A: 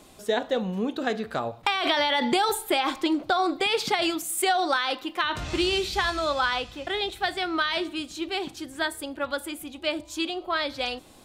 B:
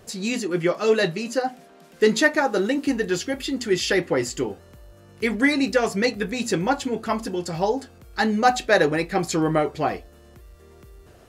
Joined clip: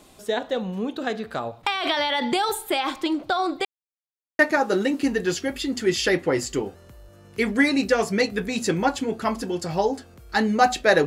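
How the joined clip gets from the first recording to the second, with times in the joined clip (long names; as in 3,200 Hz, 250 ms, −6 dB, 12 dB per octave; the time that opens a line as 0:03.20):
A
0:03.65–0:04.39: silence
0:04.39: continue with B from 0:02.23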